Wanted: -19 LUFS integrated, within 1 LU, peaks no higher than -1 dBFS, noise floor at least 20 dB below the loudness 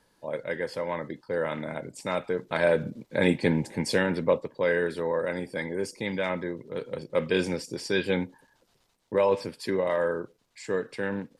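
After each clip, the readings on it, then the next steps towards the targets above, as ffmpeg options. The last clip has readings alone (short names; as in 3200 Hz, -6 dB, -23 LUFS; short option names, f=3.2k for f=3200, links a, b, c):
loudness -28.5 LUFS; peak -9.5 dBFS; loudness target -19.0 LUFS
-> -af "volume=9.5dB,alimiter=limit=-1dB:level=0:latency=1"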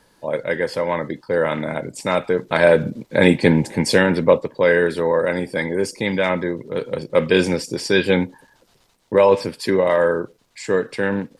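loudness -19.5 LUFS; peak -1.0 dBFS; noise floor -59 dBFS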